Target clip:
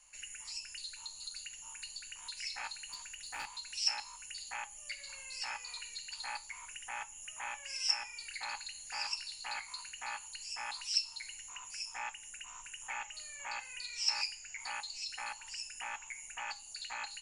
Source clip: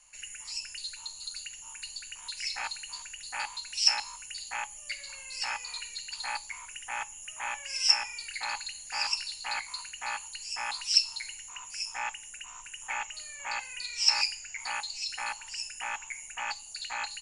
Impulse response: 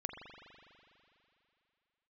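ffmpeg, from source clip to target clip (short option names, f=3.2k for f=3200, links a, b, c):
-filter_complex "[0:a]asplit=2[a][b];[b]acompressor=threshold=-41dB:ratio=6,volume=1dB[c];[a][c]amix=inputs=2:normalize=0,asettb=1/sr,asplit=3[d][e][f];[d]atrim=end=2.924[g];[e]atrim=start=2.92:end=3.47,asetpts=PTS-STARTPTS,afade=t=in:d=0.004:c=qsin,afade=t=out:st=0.546:d=0.004:c=qsin,aeval=exprs='clip(val(0),-1,0.0355)':c=same[h];[f]atrim=start=3.466[i];[g][h]acrossfade=d=0.004:c1=hsin:c2=qsin[j];[j][i]acrossfade=d=0.004:c1=qsin:c2=hsin,flanger=delay=3.7:depth=4.5:regen=-81:speed=0.26:shape=sinusoidal,volume=-5dB"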